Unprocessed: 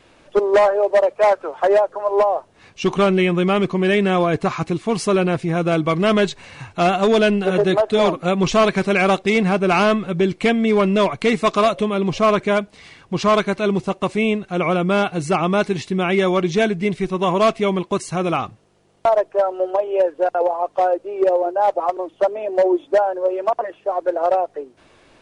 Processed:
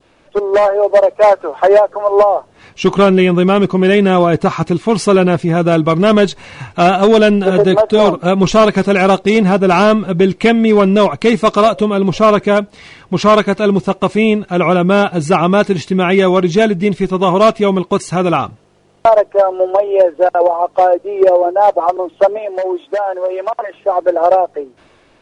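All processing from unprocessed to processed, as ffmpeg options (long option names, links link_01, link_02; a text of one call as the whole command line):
ffmpeg -i in.wav -filter_complex "[0:a]asettb=1/sr,asplit=3[link_01][link_02][link_03];[link_01]atrim=end=22.384[link_04];[link_02]atrim=start=22.38:end=23.74,asetpts=PTS-STARTPTS,afade=type=in:duration=0.004:curve=qsin,afade=type=out:start_time=1.356:duration=0.004:curve=qsin,lowshelf=frequency=450:gain=-12,acompressor=threshold=-21dB:ratio=6:attack=3.2:release=140:knee=1:detection=peak[link_05];[link_03]atrim=start=23.736[link_06];[link_04][link_05]acrossfade=duration=0.004:curve1=hsin:curve2=qsin[link_07];[link_07][link_06]acrossfade=duration=0.004:curve1=qsin:curve2=hsin,adynamicequalizer=threshold=0.0178:dfrequency=2100:dqfactor=1.2:tfrequency=2100:tqfactor=1.2:attack=5:release=100:ratio=0.375:range=2.5:mode=cutabove:tftype=bell,dynaudnorm=framelen=150:gausssize=9:maxgain=11.5dB,highshelf=frequency=6300:gain=-4.5" out.wav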